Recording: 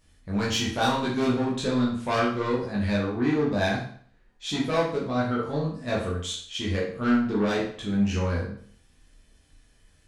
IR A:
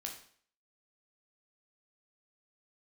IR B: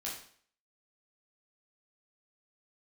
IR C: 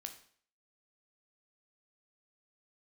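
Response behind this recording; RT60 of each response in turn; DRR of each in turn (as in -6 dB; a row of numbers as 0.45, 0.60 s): B; 0.55, 0.55, 0.55 s; 0.5, -5.5, 5.0 dB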